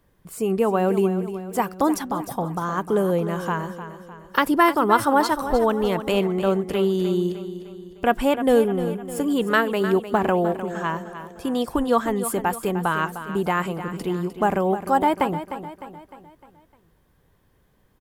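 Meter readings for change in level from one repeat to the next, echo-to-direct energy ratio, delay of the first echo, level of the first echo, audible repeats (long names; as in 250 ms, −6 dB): −6.5 dB, −10.5 dB, 304 ms, −11.5 dB, 4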